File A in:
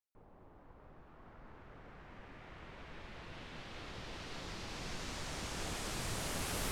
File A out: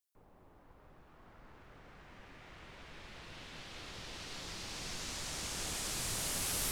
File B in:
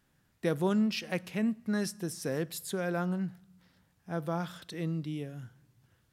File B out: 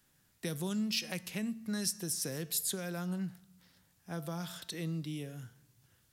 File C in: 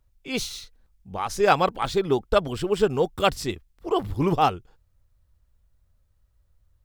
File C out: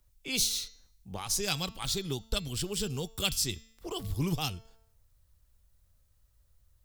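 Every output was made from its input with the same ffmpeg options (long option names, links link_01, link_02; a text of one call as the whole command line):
ffmpeg -i in.wav -filter_complex "[0:a]highshelf=frequency=3400:gain=11.5,bandreject=frequency=223.9:width_type=h:width=4,bandreject=frequency=447.8:width_type=h:width=4,bandreject=frequency=671.7:width_type=h:width=4,bandreject=frequency=895.6:width_type=h:width=4,bandreject=frequency=1119.5:width_type=h:width=4,bandreject=frequency=1343.4:width_type=h:width=4,bandreject=frequency=1567.3:width_type=h:width=4,bandreject=frequency=1791.2:width_type=h:width=4,bandreject=frequency=2015.1:width_type=h:width=4,bandreject=frequency=2239:width_type=h:width=4,bandreject=frequency=2462.9:width_type=h:width=4,bandreject=frequency=2686.8:width_type=h:width=4,bandreject=frequency=2910.7:width_type=h:width=4,bandreject=frequency=3134.6:width_type=h:width=4,bandreject=frequency=3358.5:width_type=h:width=4,bandreject=frequency=3582.4:width_type=h:width=4,bandreject=frequency=3806.3:width_type=h:width=4,bandreject=frequency=4030.2:width_type=h:width=4,bandreject=frequency=4254.1:width_type=h:width=4,bandreject=frequency=4478:width_type=h:width=4,bandreject=frequency=4701.9:width_type=h:width=4,bandreject=frequency=4925.8:width_type=h:width=4,bandreject=frequency=5149.7:width_type=h:width=4,bandreject=frequency=5373.6:width_type=h:width=4,bandreject=frequency=5597.5:width_type=h:width=4,bandreject=frequency=5821.4:width_type=h:width=4,bandreject=frequency=6045.3:width_type=h:width=4,bandreject=frequency=6269.2:width_type=h:width=4,bandreject=frequency=6493.1:width_type=h:width=4,bandreject=frequency=6717:width_type=h:width=4,bandreject=frequency=6940.9:width_type=h:width=4,bandreject=frequency=7164.8:width_type=h:width=4,bandreject=frequency=7388.7:width_type=h:width=4,acrossover=split=200|3000[link_01][link_02][link_03];[link_02]acompressor=threshold=-37dB:ratio=6[link_04];[link_01][link_04][link_03]amix=inputs=3:normalize=0,volume=-2.5dB" out.wav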